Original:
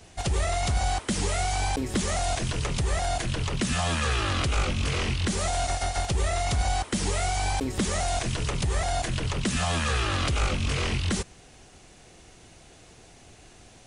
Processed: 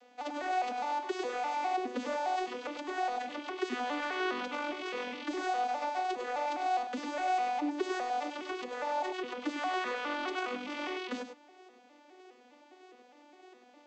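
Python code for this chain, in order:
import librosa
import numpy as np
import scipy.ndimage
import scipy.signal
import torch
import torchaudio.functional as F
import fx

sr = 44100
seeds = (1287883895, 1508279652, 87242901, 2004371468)

p1 = fx.vocoder_arp(x, sr, chord='minor triad', root=59, every_ms=205)
p2 = scipy.signal.sosfilt(scipy.signal.butter(2, 430.0, 'highpass', fs=sr, output='sos'), p1)
p3 = np.clip(p2, -10.0 ** (-35.0 / 20.0), 10.0 ** (-35.0 / 20.0))
p4 = p2 + (p3 * 10.0 ** (-11.0 / 20.0))
p5 = fx.air_absorb(p4, sr, metres=110.0)
p6 = p5 + fx.echo_single(p5, sr, ms=100, db=-8.0, dry=0)
y = p6 * 10.0 ** (-3.5 / 20.0)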